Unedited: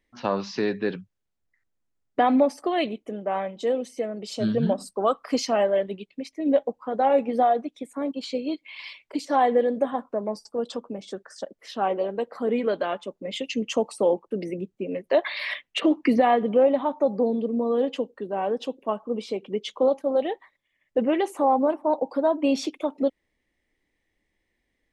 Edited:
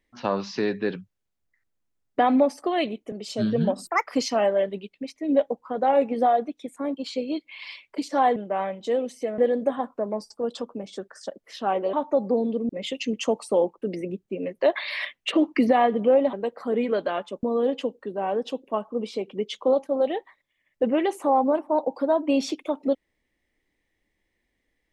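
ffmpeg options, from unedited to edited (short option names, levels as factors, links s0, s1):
-filter_complex "[0:a]asplit=10[s0][s1][s2][s3][s4][s5][s6][s7][s8][s9];[s0]atrim=end=3.122[s10];[s1]atrim=start=4.138:end=4.894[s11];[s2]atrim=start=4.89:end=5.24,asetpts=PTS-STARTPTS,asetrate=76734,aresample=44100[s12];[s3]atrim=start=5.236:end=9.532[s13];[s4]atrim=start=3.118:end=4.142[s14];[s5]atrim=start=9.528:end=12.082[s15];[s6]atrim=start=16.818:end=17.582[s16];[s7]atrim=start=13.178:end=16.822[s17];[s8]atrim=start=12.078:end=13.182[s18];[s9]atrim=start=17.578[s19];[s10][s11]acrossfade=d=0.004:c1=hsin:c2=hsin[s20];[s20][s12]acrossfade=d=0.004:c1=hsin:c2=hsin[s21];[s21][s13]acrossfade=d=0.004:c1=hsin:c2=hsin[s22];[s22][s14]acrossfade=d=0.004:c1=hsin:c2=hsin[s23];[s23][s15]acrossfade=d=0.004:c1=hsin:c2=hsin[s24];[s24][s16]acrossfade=d=0.004:c1=hsin:c2=hsin[s25];[s25][s17]acrossfade=d=0.004:c1=hsin:c2=hsin[s26];[s26][s18]acrossfade=d=0.004:c1=hsin:c2=hsin[s27];[s27][s19]acrossfade=d=0.004:c1=hsin:c2=hsin"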